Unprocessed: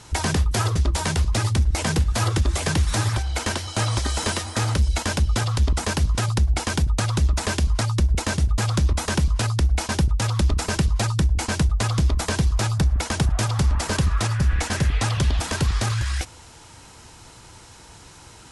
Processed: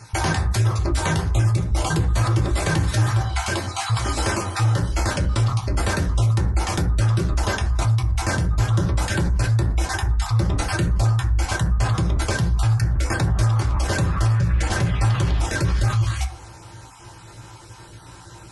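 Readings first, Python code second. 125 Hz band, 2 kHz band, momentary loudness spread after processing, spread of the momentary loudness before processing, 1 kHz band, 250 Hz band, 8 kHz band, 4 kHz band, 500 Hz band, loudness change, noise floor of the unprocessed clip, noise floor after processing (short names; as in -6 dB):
+2.5 dB, +1.5 dB, 3 LU, 2 LU, +2.0 dB, +0.5 dB, -2.5 dB, -2.5 dB, +1.5 dB, +1.0 dB, -46 dBFS, -43 dBFS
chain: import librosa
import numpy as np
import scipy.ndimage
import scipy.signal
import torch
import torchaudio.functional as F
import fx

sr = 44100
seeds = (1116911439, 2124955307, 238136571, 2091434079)

p1 = fx.spec_dropout(x, sr, seeds[0], share_pct=21)
p2 = fx.rev_fdn(p1, sr, rt60_s=0.52, lf_ratio=1.0, hf_ratio=0.35, size_ms=52.0, drr_db=-2.5)
p3 = fx.over_compress(p2, sr, threshold_db=-19.0, ratio=-1.0)
p4 = p2 + (p3 * 10.0 ** (-2.5 / 20.0))
y = p4 * 10.0 ** (-7.5 / 20.0)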